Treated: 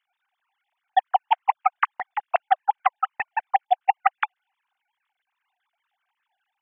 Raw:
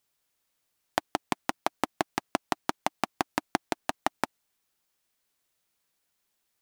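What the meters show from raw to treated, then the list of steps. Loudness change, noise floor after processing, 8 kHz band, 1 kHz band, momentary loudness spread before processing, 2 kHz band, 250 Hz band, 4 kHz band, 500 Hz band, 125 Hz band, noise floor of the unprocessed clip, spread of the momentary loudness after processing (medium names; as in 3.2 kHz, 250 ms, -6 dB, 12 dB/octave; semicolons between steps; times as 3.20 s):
+8.5 dB, -83 dBFS, under -35 dB, +11.5 dB, 4 LU, +6.0 dB, under -30 dB, -2.5 dB, +2.5 dB, under -20 dB, -78 dBFS, 7 LU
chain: formants replaced by sine waves; LFO high-pass saw down 5 Hz 420–1600 Hz; trim +5 dB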